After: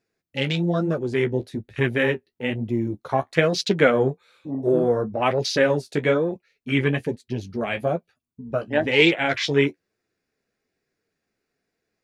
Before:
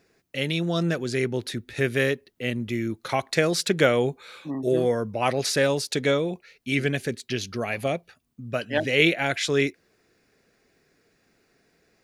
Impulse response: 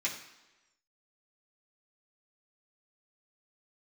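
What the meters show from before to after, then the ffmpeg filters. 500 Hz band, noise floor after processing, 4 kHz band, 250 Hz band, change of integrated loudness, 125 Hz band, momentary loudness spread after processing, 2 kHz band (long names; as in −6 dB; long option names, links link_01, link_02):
+3.0 dB, −81 dBFS, +0.5 dB, +3.0 dB, +2.5 dB, +2.5 dB, 11 LU, +2.0 dB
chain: -af "afwtdn=0.0282,flanger=delay=8:depth=7.4:regen=-32:speed=1.1:shape=triangular,volume=6.5dB"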